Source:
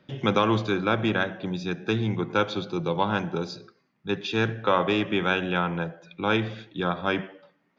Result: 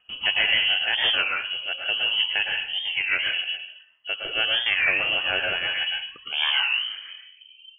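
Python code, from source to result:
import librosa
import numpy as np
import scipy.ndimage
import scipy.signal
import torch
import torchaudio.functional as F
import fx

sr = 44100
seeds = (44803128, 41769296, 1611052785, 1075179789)

y = fx.tape_stop_end(x, sr, length_s=2.07)
y = fx.rotary(y, sr, hz=6.3)
y = fx.rev_plate(y, sr, seeds[0], rt60_s=0.5, hf_ratio=0.65, predelay_ms=100, drr_db=0.0)
y = fx.freq_invert(y, sr, carrier_hz=3100)
y = fx.record_warp(y, sr, rpm=33.33, depth_cents=160.0)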